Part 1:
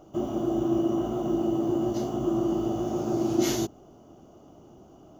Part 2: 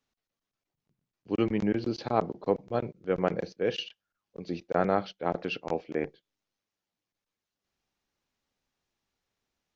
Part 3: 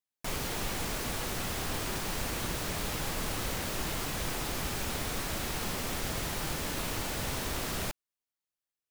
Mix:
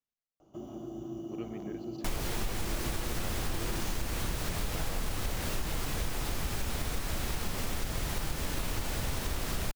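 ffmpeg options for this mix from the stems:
ffmpeg -i stem1.wav -i stem2.wav -i stem3.wav -filter_complex "[0:a]acrossover=split=270|3000[link_01][link_02][link_03];[link_02]acompressor=threshold=-33dB:ratio=6[link_04];[link_01][link_04][link_03]amix=inputs=3:normalize=0,adelay=400,volume=-11dB[link_05];[1:a]volume=-16dB[link_06];[2:a]lowshelf=frequency=86:gain=11,adelay=1800,volume=2dB[link_07];[link_05][link_06][link_07]amix=inputs=3:normalize=0,acompressor=threshold=-29dB:ratio=4" out.wav

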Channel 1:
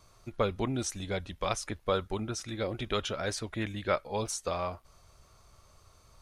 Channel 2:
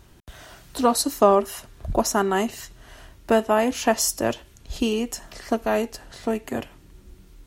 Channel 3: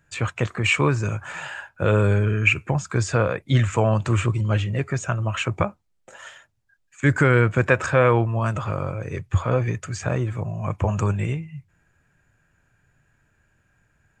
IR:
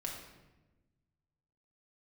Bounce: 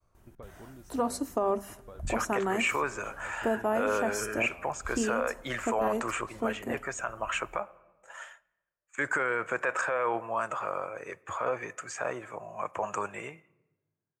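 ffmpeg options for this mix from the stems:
-filter_complex "[0:a]acompressor=threshold=-41dB:ratio=2.5,highshelf=frequency=7800:gain=-12,agate=range=-33dB:threshold=-60dB:ratio=3:detection=peak,volume=-9dB[link_01];[1:a]bandreject=frequency=50:width_type=h:width=6,bandreject=frequency=100:width_type=h:width=6,bandreject=frequency=150:width_type=h:width=6,bandreject=frequency=200:width_type=h:width=6,bandreject=frequency=250:width_type=h:width=6,acrossover=split=9300[link_02][link_03];[link_03]acompressor=threshold=-44dB:ratio=4:attack=1:release=60[link_04];[link_02][link_04]amix=inputs=2:normalize=0,adelay=150,volume=-7dB,asplit=2[link_05][link_06];[link_06]volume=-20.5dB[link_07];[2:a]highpass=670,agate=range=-33dB:threshold=-43dB:ratio=3:detection=peak,adelay=1950,volume=0.5dB,asplit=2[link_08][link_09];[link_09]volume=-19dB[link_10];[3:a]atrim=start_sample=2205[link_11];[link_07][link_10]amix=inputs=2:normalize=0[link_12];[link_12][link_11]afir=irnorm=-1:irlink=0[link_13];[link_01][link_05][link_08][link_13]amix=inputs=4:normalize=0,equalizer=frequency=4000:width_type=o:width=1.5:gain=-12,alimiter=limit=-18.5dB:level=0:latency=1:release=29"

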